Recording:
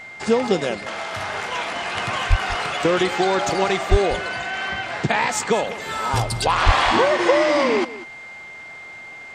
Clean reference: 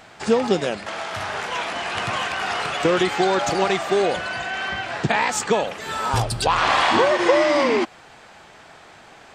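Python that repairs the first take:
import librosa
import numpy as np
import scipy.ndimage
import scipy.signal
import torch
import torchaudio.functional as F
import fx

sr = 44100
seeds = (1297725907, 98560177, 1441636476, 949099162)

y = fx.notch(x, sr, hz=2100.0, q=30.0)
y = fx.highpass(y, sr, hz=140.0, slope=24, at=(2.29, 2.41), fade=0.02)
y = fx.highpass(y, sr, hz=140.0, slope=24, at=(3.9, 4.02), fade=0.02)
y = fx.highpass(y, sr, hz=140.0, slope=24, at=(6.65, 6.77), fade=0.02)
y = fx.fix_echo_inverse(y, sr, delay_ms=193, level_db=-16.5)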